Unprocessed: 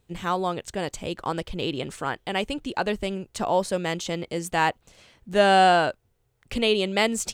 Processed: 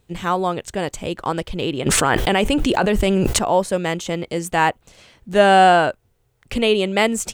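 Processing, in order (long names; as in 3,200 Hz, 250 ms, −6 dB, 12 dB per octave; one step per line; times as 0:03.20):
dynamic equaliser 4,500 Hz, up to −7 dB, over −44 dBFS, Q 1.5
0:01.86–0:03.39: envelope flattener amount 100%
level +5.5 dB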